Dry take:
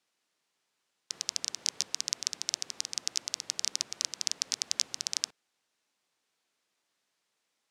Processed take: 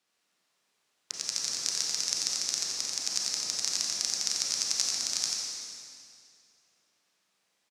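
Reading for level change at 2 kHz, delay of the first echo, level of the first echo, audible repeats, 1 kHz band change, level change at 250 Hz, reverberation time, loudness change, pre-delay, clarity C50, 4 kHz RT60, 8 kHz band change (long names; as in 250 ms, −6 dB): +2.5 dB, 89 ms, −4.5 dB, 1, +5.0 dB, +5.0 dB, 2.3 s, +3.5 dB, 28 ms, −2.0 dB, 2.2 s, +4.5 dB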